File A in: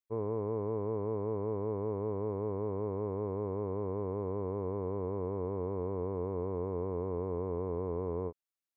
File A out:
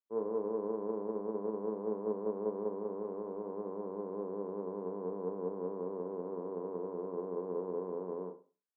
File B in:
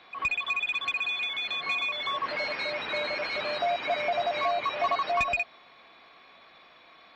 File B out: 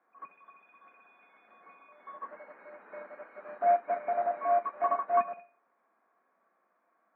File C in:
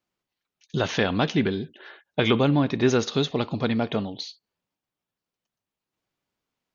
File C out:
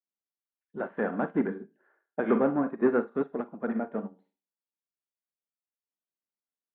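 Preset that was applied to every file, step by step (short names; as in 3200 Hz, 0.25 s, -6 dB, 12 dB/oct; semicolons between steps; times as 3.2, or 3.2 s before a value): Schroeder reverb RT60 0.35 s, combs from 33 ms, DRR 6.5 dB; soft clip -15 dBFS; elliptic band-pass 200–1600 Hz, stop band 50 dB; upward expander 2.5:1, over -36 dBFS; gain +2.5 dB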